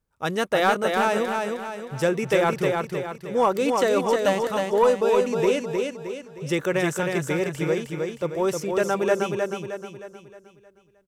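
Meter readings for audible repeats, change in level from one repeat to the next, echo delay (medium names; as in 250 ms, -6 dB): 5, -7.0 dB, 311 ms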